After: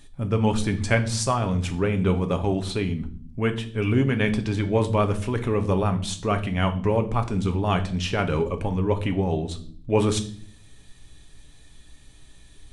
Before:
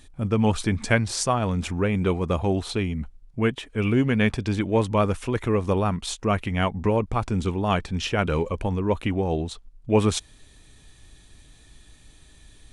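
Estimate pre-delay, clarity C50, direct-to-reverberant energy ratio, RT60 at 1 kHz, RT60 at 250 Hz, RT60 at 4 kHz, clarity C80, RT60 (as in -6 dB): 5 ms, 14.0 dB, 6.5 dB, 0.40 s, 0.90 s, 0.50 s, 18.5 dB, 0.50 s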